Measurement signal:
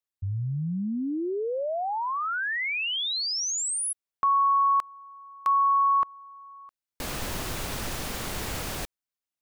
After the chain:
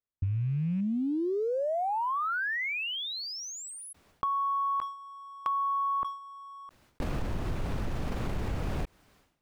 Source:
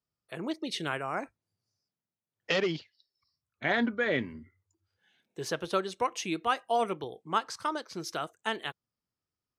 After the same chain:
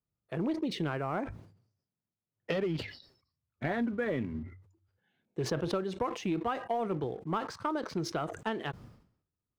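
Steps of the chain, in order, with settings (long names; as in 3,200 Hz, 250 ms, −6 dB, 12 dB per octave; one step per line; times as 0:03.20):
loose part that buzzes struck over −38 dBFS, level −35 dBFS
low-pass filter 1,100 Hz 6 dB per octave
low-shelf EQ 250 Hz +8 dB
downward compressor 16 to 1, threshold −31 dBFS
leveller curve on the samples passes 1
level that may fall only so fast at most 93 dB per second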